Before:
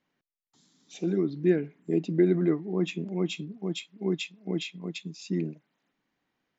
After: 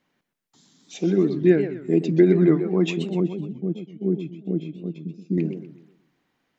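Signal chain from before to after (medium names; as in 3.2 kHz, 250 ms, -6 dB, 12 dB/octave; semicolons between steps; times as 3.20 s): 3.20–5.38 s: boxcar filter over 47 samples; modulated delay 126 ms, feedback 37%, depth 208 cents, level -10 dB; trim +6.5 dB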